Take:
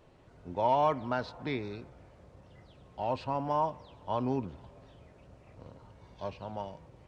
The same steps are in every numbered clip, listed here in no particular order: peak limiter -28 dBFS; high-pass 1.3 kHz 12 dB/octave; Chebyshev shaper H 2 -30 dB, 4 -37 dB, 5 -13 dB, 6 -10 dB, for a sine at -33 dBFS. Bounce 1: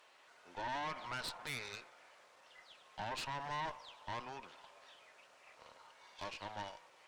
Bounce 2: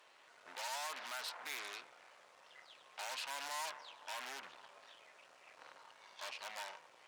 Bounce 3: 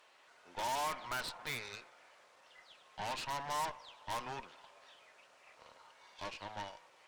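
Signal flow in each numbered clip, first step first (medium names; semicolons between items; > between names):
peak limiter > high-pass > Chebyshev shaper; peak limiter > Chebyshev shaper > high-pass; high-pass > peak limiter > Chebyshev shaper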